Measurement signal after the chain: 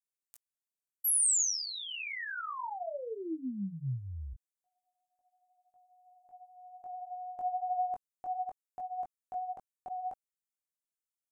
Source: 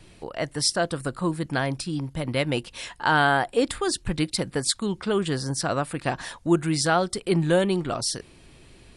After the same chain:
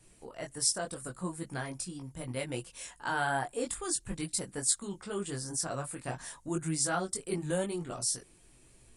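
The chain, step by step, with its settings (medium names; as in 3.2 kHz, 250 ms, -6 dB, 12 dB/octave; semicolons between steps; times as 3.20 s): resonant high shelf 5.6 kHz +9.5 dB, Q 1.5; chorus voices 6, 0.6 Hz, delay 20 ms, depth 4.7 ms; trim -8.5 dB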